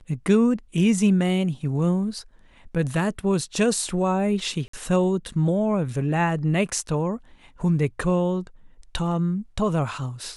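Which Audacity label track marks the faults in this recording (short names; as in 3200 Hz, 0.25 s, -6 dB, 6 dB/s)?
4.680000	4.730000	gap 54 ms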